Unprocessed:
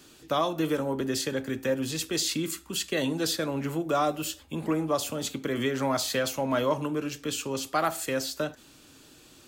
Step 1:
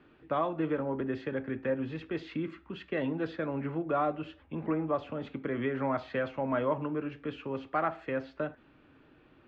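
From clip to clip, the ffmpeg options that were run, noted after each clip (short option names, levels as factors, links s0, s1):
-af "lowpass=f=2300:w=0.5412,lowpass=f=2300:w=1.3066,volume=0.668"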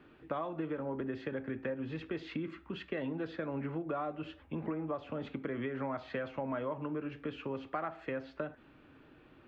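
-af "acompressor=threshold=0.0178:ratio=5,volume=1.12"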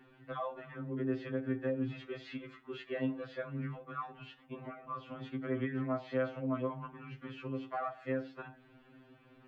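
-af "afftfilt=real='re*2.45*eq(mod(b,6),0)':imag='im*2.45*eq(mod(b,6),0)':win_size=2048:overlap=0.75,volume=1.12"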